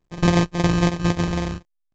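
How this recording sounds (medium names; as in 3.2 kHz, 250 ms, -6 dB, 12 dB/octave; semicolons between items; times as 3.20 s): a buzz of ramps at a fixed pitch in blocks of 256 samples; phasing stages 8, 3.7 Hz, lowest notch 630–2500 Hz; aliases and images of a low sample rate 1.4 kHz, jitter 0%; A-law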